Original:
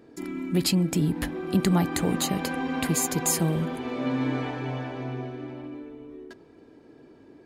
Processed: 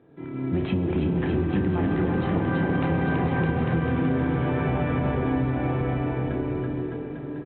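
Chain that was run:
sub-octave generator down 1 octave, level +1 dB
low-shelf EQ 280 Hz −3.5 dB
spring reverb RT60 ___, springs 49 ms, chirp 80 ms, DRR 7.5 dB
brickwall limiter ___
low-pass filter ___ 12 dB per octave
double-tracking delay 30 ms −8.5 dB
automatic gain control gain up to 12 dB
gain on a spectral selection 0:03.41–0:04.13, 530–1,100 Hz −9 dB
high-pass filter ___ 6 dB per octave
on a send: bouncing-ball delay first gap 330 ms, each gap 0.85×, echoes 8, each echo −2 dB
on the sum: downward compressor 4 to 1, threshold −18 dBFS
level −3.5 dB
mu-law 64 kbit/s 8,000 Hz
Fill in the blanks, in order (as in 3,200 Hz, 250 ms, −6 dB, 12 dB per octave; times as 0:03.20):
3.3 s, −17.5 dBFS, 1,800 Hz, 92 Hz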